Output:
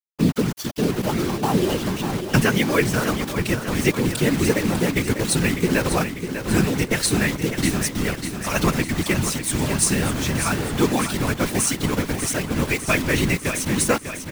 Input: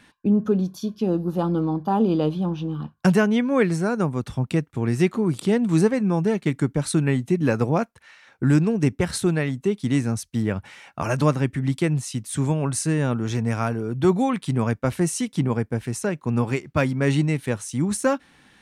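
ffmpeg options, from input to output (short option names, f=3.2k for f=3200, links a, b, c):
-filter_complex "[0:a]firequalizer=gain_entry='entry(730,0);entry(2200,13);entry(5500,14)':delay=0.05:min_phase=1,acrossover=split=1900[a][b];[a]acontrast=38[c];[c][b]amix=inputs=2:normalize=0,atempo=1.3,acrusher=bits=3:mix=0:aa=0.000001,afftfilt=real='hypot(re,im)*cos(2*PI*random(0))':imag='hypot(re,im)*sin(2*PI*random(1))':win_size=512:overlap=0.75,aecho=1:1:597|1194|1791|2388|2985|3582|4179:0.355|0.206|0.119|0.0692|0.0402|0.0233|0.0135"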